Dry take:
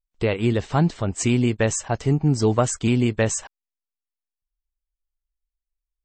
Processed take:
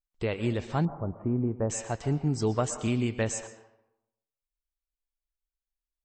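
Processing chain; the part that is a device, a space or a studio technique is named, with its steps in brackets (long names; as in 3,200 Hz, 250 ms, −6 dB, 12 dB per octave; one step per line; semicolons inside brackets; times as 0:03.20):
filtered reverb send (on a send: high-pass filter 410 Hz 6 dB per octave + low-pass filter 6,000 Hz 12 dB per octave + convolution reverb RT60 0.85 s, pre-delay 107 ms, DRR 9.5 dB)
0:00.85–0:01.70: on the sum: inverse Chebyshev low-pass filter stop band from 4,900 Hz, stop band 70 dB
level −8 dB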